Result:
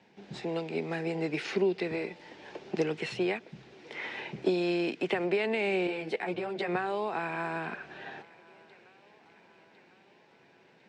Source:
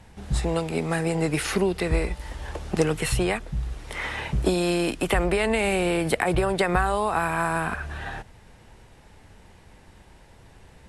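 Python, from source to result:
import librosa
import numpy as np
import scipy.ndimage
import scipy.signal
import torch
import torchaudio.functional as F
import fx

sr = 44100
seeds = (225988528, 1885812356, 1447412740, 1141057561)

y = fx.cabinet(x, sr, low_hz=170.0, low_slope=24, high_hz=5500.0, hz=(380.0, 1200.0, 2400.0), db=(6, -7, 4))
y = fx.echo_thinned(y, sr, ms=1053, feedback_pct=63, hz=420.0, wet_db=-23.5)
y = fx.ensemble(y, sr, at=(5.87, 6.68))
y = F.gain(torch.from_numpy(y), -8.0).numpy()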